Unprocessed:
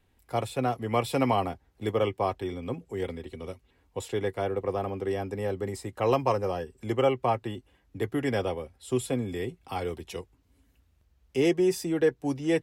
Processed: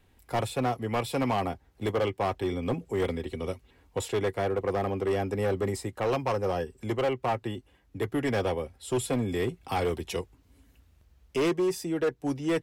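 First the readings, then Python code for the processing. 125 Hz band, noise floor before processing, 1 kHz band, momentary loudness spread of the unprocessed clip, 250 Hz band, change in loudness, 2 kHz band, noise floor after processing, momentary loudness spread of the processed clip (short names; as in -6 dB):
+0.5 dB, -68 dBFS, -1.0 dB, 13 LU, -0.5 dB, -0.5 dB, +1.0 dB, -64 dBFS, 8 LU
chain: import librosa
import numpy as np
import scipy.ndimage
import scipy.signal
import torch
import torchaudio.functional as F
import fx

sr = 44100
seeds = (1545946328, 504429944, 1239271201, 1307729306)

y = fx.rider(x, sr, range_db=4, speed_s=0.5)
y = np.clip(10.0 ** (23.5 / 20.0) * y, -1.0, 1.0) / 10.0 ** (23.5 / 20.0)
y = y * 10.0 ** (1.5 / 20.0)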